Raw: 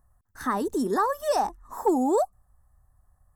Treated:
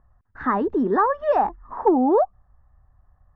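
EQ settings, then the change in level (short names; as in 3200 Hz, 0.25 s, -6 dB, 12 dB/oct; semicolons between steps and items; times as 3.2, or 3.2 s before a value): LPF 2400 Hz 24 dB/oct; +5.0 dB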